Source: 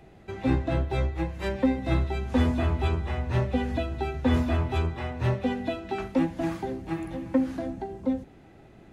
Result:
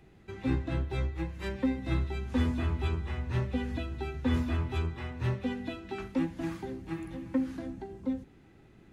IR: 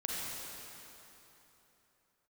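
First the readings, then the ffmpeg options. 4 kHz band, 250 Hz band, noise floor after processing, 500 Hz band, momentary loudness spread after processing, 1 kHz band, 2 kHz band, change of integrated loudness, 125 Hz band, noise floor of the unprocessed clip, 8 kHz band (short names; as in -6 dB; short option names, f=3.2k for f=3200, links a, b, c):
-4.5 dB, -5.0 dB, -57 dBFS, -8.0 dB, 9 LU, -9.0 dB, -5.0 dB, -5.5 dB, -4.5 dB, -52 dBFS, n/a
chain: -af "equalizer=f=660:t=o:w=0.72:g=-9,volume=-4.5dB"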